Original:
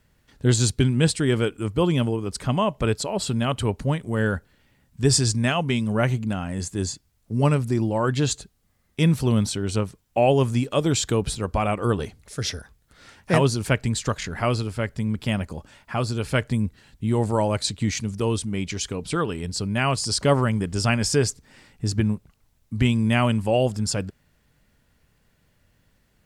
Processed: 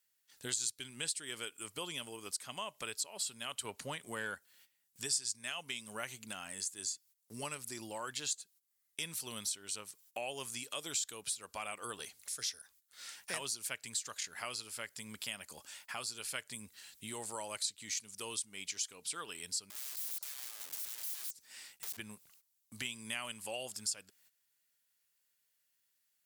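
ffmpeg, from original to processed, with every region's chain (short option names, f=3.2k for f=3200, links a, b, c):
-filter_complex "[0:a]asettb=1/sr,asplit=3[a][b][c];[a]atrim=end=3.644[d];[b]atrim=start=3.64:end=4.35,asetpts=PTS-STARTPTS,afade=t=in:d=0.004:c=qsin,afade=t=out:st=0.706:d=0.004:c=qsin,highpass=60,highshelf=f=4.4k:g=-7.5,acontrast=80[e];[c]atrim=start=4.346[f];[d][e]acrossfade=d=0.004:c1=hsin:c2=qsin[g];[g][f]acrossfade=d=0.004:c1=qsin:c2=hsin,asettb=1/sr,asplit=3[h][i][j];[h]atrim=end=19.704[k];[i]atrim=start=19.7:end=21.97,asetpts=PTS-STARTPTS,afade=t=in:d=0.004:c=qsin,afade=t=out:st=2.266:d=0.004:c=qsin,acompressor=threshold=-32dB:ratio=4:attack=3.2:release=140:knee=1:detection=peak,aeval=exprs='(mod(63.1*val(0)+1,2)-1)/63.1':c=same[l];[j]atrim=start=21.966[m];[k][l]acrossfade=d=0.004:c1=hsin:c2=qsin[n];[n][m]acrossfade=d=0.004:c1=qsin:c2=hsin,agate=range=-15dB:threshold=-54dB:ratio=16:detection=peak,aderivative,acompressor=threshold=-51dB:ratio=2.5,volume=8.5dB"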